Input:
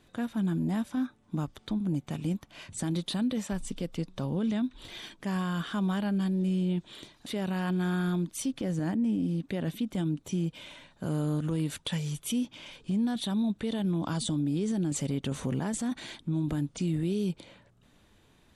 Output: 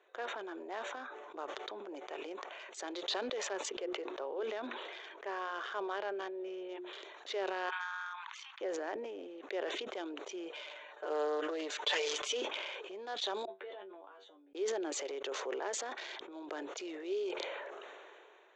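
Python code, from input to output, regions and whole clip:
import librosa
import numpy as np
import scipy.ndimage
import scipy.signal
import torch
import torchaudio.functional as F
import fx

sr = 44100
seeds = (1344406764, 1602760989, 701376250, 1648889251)

y = fx.chain(x, sr, fx.high_shelf(hz=4800.0, db=-9.5),
    fx.hum_notches(base_hz=60, count=6), at=(3.69, 6.93))
y = fx.chain(y, sr, fx.steep_highpass(hz=880.0, slope=72),
    fx.peak_eq(hz=8000.0, db=-14.5, octaves=1.2), at=(7.69, 8.6))
y = fx.chain(y, sr, fx.highpass(hz=150.0, slope=12),
    fx.comb(ms=6.7, depth=0.89),
    fx.doppler_dist(depth_ms=0.12), at=(10.51, 12.42))
y = fx.chain(y, sr, fx.comb_fb(f0_hz=96.0, decay_s=0.19, harmonics='all', damping=0.0, mix_pct=100),
    fx.gate_flip(shuts_db=-37.0, range_db=-32),
    fx.air_absorb(metres=160.0), at=(13.45, 14.55))
y = fx.wiener(y, sr, points=9)
y = scipy.signal.sosfilt(scipy.signal.cheby1(5, 1.0, [380.0, 6900.0], 'bandpass', fs=sr, output='sos'), y)
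y = fx.sustainer(y, sr, db_per_s=23.0)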